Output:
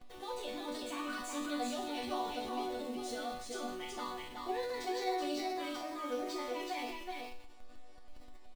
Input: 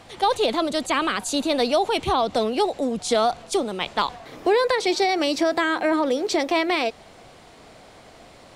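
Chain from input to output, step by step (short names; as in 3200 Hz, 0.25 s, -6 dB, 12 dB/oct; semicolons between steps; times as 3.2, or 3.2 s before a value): bin magnitudes rounded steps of 15 dB; in parallel at -8 dB: Schmitt trigger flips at -38 dBFS; on the sum: resonator bank B3 minor, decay 0.58 s; echo 0.377 s -3.5 dB; transient shaper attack +1 dB, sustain +5 dB; gain +1 dB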